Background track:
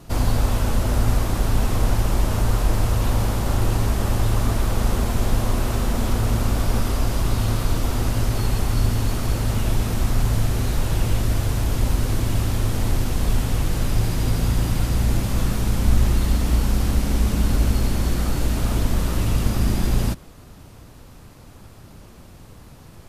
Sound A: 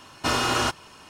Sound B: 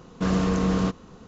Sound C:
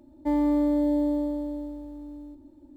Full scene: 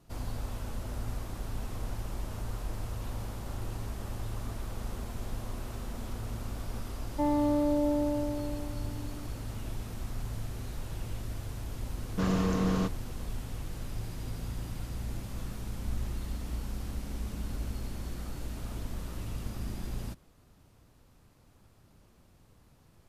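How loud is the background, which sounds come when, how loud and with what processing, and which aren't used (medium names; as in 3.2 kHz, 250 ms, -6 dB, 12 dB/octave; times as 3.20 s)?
background track -17 dB
6.93 s: add C -8 dB + peaking EQ 830 Hz +9.5 dB 2 oct
11.97 s: add B -5.5 dB
not used: A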